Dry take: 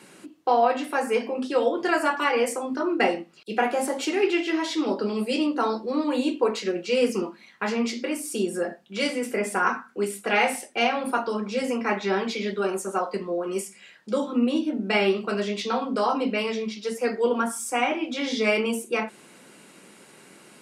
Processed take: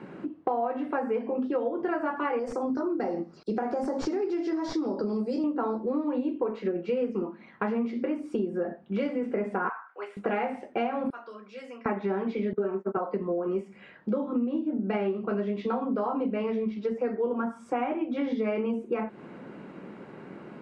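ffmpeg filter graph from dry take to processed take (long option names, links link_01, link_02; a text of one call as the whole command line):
ffmpeg -i in.wav -filter_complex "[0:a]asettb=1/sr,asplit=3[link_01][link_02][link_03];[link_01]atrim=end=2.394[link_04];[link_02]atrim=start=2.39:end=5.44,asetpts=PTS-STARTPTS,afade=type=in:duration=0.004:curve=qsin,afade=type=out:start_time=3.046:duration=0.004:curve=qsin,acompressor=threshold=-29dB:ratio=2:attack=3.2:release=140:knee=1:detection=peak,highshelf=frequency=3900:width_type=q:width=3:gain=11,aeval=exprs='clip(val(0),-1,0.126)':channel_layout=same[link_05];[link_03]atrim=start=5.436[link_06];[link_04][link_05]acrossfade=duration=0.004:curve1=hsin:curve2=qsin[link_07];[link_07][link_06]acrossfade=duration=0.004:curve1=qsin:curve2=hsin,asettb=1/sr,asplit=3[link_08][link_09][link_10];[link_08]atrim=end=9.694[link_11];[link_09]atrim=start=9.69:end=10.17,asetpts=PTS-STARTPTS,afade=type=in:duration=0.004:curve=qsin,afade=type=out:start_time=0.476:duration=0.004:curve=qsin,highpass=frequency=750:width=0.5412,highpass=frequency=750:width=1.3066,highshelf=frequency=4800:gain=-9[link_12];[link_10]atrim=start=10.166[link_13];[link_11][link_12]acrossfade=duration=0.004:curve1=hsin:curve2=qsin[link_14];[link_14][link_13]acrossfade=duration=0.004:curve1=qsin:curve2=hsin,asettb=1/sr,asplit=3[link_15][link_16][link_17];[link_15]atrim=end=11.104[link_18];[link_16]atrim=start=11.1:end=11.86,asetpts=PTS-STARTPTS,afade=type=in:duration=0.004:curve=qsin,afade=type=out:start_time=0.756:duration=0.004:curve=qsin,aderivative,bandreject=frequency=870:width=5.3[link_19];[link_17]atrim=start=11.856[link_20];[link_18][link_19]acrossfade=duration=0.004:curve1=hsin:curve2=qsin[link_21];[link_21][link_20]acrossfade=duration=0.004:curve1=qsin:curve2=hsin,asettb=1/sr,asplit=3[link_22][link_23][link_24];[link_22]atrim=end=12.534[link_25];[link_23]atrim=start=12.53:end=12.97,asetpts=PTS-STARTPTS,afade=type=in:duration=0.004:curve=qsin,afade=type=out:start_time=0.436:duration=0.004:curve=qsin,agate=range=-22dB:threshold=-33dB:ratio=16:release=100:detection=peak,highpass=210,lowpass=2300,aecho=1:1:4.6:0.95,atrim=end_sample=19404[link_26];[link_24]atrim=start=12.966[link_27];[link_25][link_26]acrossfade=duration=0.004:curve1=hsin:curve2=qsin[link_28];[link_28][link_27]acrossfade=duration=0.004:curve1=qsin:curve2=hsin,lowpass=1400,lowshelf=frequency=350:gain=6.5,acompressor=threshold=-32dB:ratio=6,volume=5.5dB" out.wav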